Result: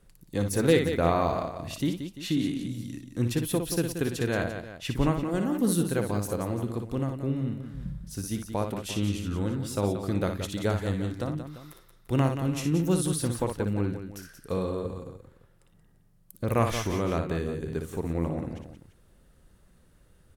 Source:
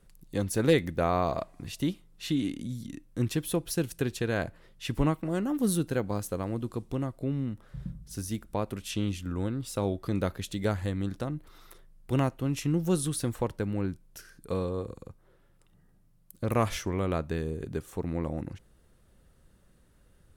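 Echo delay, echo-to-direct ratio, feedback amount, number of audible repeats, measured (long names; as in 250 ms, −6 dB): 59 ms, −4.5 dB, repeats not evenly spaced, 3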